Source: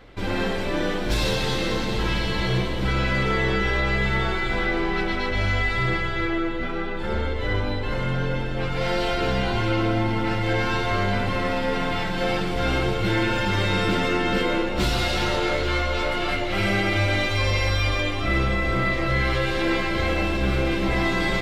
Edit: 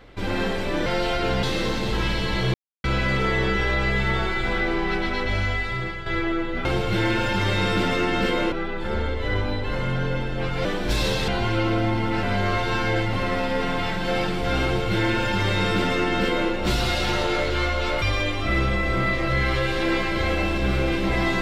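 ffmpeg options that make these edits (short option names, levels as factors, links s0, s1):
-filter_complex "[0:a]asplit=13[s0][s1][s2][s3][s4][s5][s6][s7][s8][s9][s10][s11][s12];[s0]atrim=end=0.862[s13];[s1]atrim=start=8.838:end=9.412[s14];[s2]atrim=start=1.488:end=2.6,asetpts=PTS-STARTPTS,afade=t=out:st=1.108:d=0.004:c=hsin[s15];[s3]atrim=start=2.6:end=2.9,asetpts=PTS-STARTPTS,volume=0[s16];[s4]atrim=start=2.9:end=6.12,asetpts=PTS-STARTPTS,afade=t=in:d=0.004:c=hsin,afade=t=out:st=2.42:d=0.8:silence=0.354813[s17];[s5]atrim=start=6.12:end=6.712,asetpts=PTS-STARTPTS,afade=t=in:d=0.004:c=hsin:silence=0.354813[s18];[s6]atrim=start=12.768:end=14.642[s19];[s7]atrim=start=6.708:end=8.842[s20];[s8]atrim=start=0.858:end=1.492[s21];[s9]atrim=start=9.408:end=10.362[s22];[s10]atrim=start=10.358:end=11.262,asetpts=PTS-STARTPTS,areverse[s23];[s11]atrim=start=11.258:end=16.152[s24];[s12]atrim=start=17.808[s25];[s13][s14]acrossfade=d=0.004:c1=hsin:c2=hsin[s26];[s15][s16][s17][s18]concat=n=4:v=0:a=1[s27];[s26][s27]acrossfade=d=0.004:c1=hsin:c2=hsin[s28];[s28][s19]acrossfade=d=0.004:c1=hsin:c2=hsin[s29];[s29][s20]acrossfade=d=0.004:c1=hsin:c2=hsin[s30];[s30][s21]acrossfade=d=0.004:c1=hsin:c2=hsin[s31];[s31][s22]acrossfade=d=0.004:c1=hsin:c2=hsin[s32];[s32][s23]acrossfade=d=0.004:c1=hsin:c2=hsin[s33];[s33][s24]acrossfade=d=0.004:c1=hsin:c2=hsin[s34];[s34][s25]acrossfade=d=0.004:c1=hsin:c2=hsin"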